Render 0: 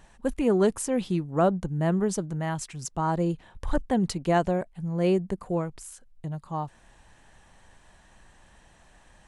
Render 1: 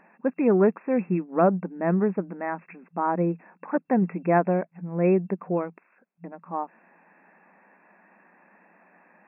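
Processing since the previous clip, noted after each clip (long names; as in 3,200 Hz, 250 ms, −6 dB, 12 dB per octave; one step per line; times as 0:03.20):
brick-wall band-pass 170–2,700 Hz
level +2.5 dB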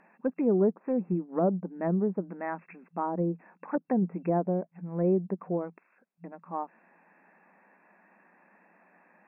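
treble cut that deepens with the level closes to 630 Hz, closed at −20 dBFS
level −4 dB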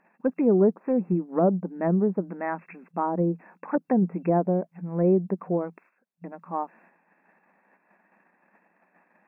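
noise gate −60 dBFS, range −10 dB
level +4.5 dB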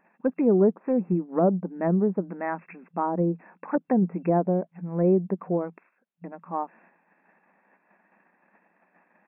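downsampling to 8,000 Hz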